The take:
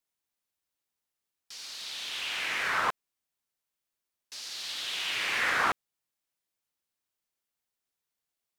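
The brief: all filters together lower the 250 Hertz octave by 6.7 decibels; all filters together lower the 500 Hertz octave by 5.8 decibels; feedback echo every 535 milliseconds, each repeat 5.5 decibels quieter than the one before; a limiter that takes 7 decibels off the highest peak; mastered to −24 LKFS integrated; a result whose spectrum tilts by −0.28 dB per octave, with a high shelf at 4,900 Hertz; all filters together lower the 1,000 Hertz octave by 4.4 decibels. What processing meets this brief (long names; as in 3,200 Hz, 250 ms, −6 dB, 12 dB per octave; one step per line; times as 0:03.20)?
parametric band 250 Hz −7.5 dB
parametric band 500 Hz −4 dB
parametric band 1,000 Hz −5 dB
high-shelf EQ 4,900 Hz +5 dB
brickwall limiter −23.5 dBFS
repeating echo 535 ms, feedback 53%, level −5.5 dB
level +9.5 dB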